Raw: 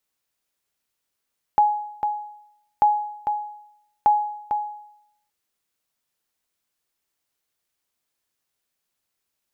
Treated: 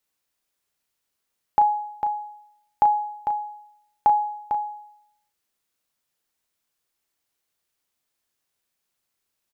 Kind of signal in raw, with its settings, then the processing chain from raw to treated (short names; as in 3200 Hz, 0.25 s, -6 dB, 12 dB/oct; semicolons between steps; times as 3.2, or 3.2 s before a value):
sonar ping 837 Hz, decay 0.77 s, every 1.24 s, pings 3, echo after 0.45 s, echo -7 dB -10 dBFS
doubler 35 ms -9 dB